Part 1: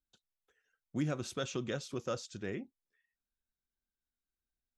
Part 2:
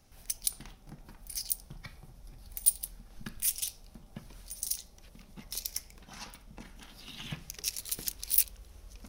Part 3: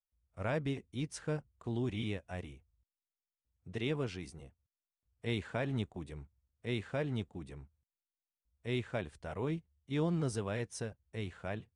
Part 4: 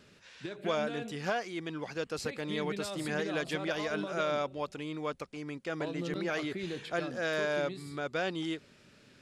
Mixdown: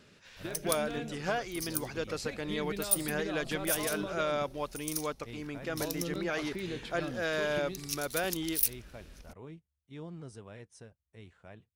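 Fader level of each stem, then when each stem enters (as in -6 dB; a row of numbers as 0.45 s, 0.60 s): -12.5 dB, -3.0 dB, -11.5 dB, 0.0 dB; 0.00 s, 0.25 s, 0.00 s, 0.00 s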